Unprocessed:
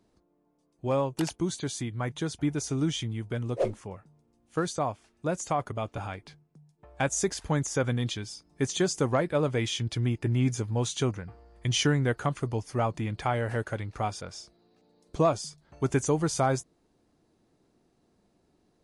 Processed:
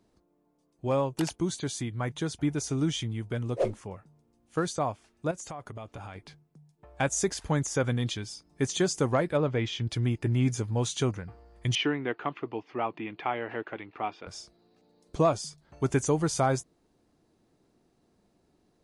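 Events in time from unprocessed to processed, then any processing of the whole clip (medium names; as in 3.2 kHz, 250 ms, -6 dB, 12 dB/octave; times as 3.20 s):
5.31–6.16 s: compression 4:1, threshold -38 dBFS
9.37–9.87 s: distance through air 150 m
11.75–14.27 s: cabinet simulation 320–3200 Hz, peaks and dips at 320 Hz +5 dB, 550 Hz -7 dB, 1.5 kHz -4 dB, 2.6 kHz +4 dB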